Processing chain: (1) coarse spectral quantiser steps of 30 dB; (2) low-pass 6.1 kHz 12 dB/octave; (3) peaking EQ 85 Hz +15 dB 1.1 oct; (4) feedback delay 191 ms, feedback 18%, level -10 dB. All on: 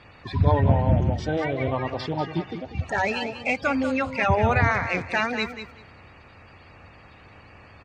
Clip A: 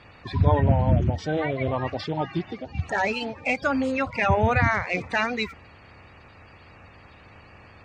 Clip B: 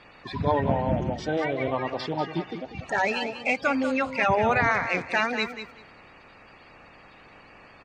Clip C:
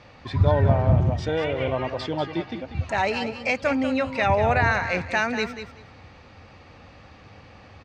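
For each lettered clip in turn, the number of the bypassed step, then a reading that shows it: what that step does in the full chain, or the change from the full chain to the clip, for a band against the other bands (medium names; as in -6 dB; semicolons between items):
4, momentary loudness spread change -1 LU; 3, 125 Hz band -9.0 dB; 1, 500 Hz band +1.5 dB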